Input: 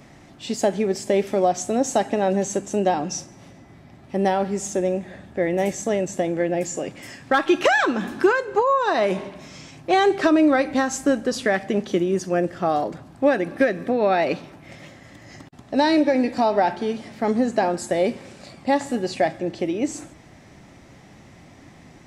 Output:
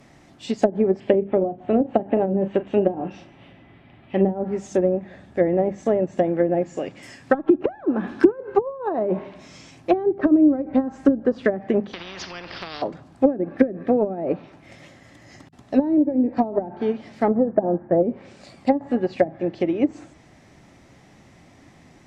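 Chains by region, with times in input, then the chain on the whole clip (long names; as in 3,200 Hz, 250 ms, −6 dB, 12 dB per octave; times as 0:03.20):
0:01.00–0:04.31: high shelf with overshoot 4,400 Hz −14 dB, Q 3 + double-tracking delay 36 ms −9 dB
0:11.93–0:12.82: Chebyshev low-pass filter 5,000 Hz, order 5 + downward compressor 5 to 1, threshold −22 dBFS + every bin compressed towards the loudest bin 4 to 1
0:17.28–0:18.03: Gaussian smoothing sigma 5.9 samples + comb filter 6.1 ms, depth 43%
whole clip: mains-hum notches 50/100/150/200 Hz; treble cut that deepens with the level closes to 320 Hz, closed at −15 dBFS; expander for the loud parts 1.5 to 1, over −34 dBFS; level +6.5 dB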